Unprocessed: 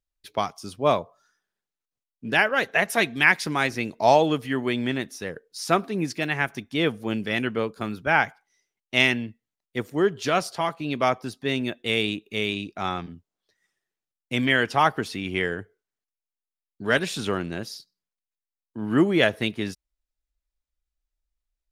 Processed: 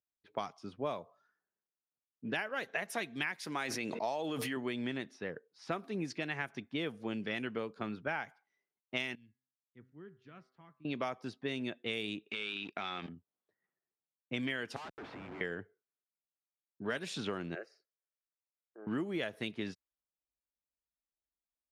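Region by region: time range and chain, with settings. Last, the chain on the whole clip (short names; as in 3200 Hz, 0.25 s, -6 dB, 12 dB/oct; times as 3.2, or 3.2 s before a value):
3.39–4.57 low shelf 150 Hz -10.5 dB + sustainer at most 32 dB/s
9.15–10.85 passive tone stack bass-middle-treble 6-0-2 + de-hum 128.9 Hz, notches 17
12.27–13.09 weighting filter D + sample leveller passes 2 + compressor 16:1, threshold -26 dBFS
14.76–15.41 HPF 630 Hz + compressor 2.5:1, threshold -36 dBFS + Schmitt trigger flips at -42.5 dBFS
17.55–18.87 HPF 310 Hz 24 dB/oct + fixed phaser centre 940 Hz, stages 6 + mismatched tape noise reduction encoder only
whole clip: HPF 120 Hz; low-pass opened by the level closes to 1200 Hz, open at -19.5 dBFS; compressor 10:1, threshold -26 dBFS; gain -6.5 dB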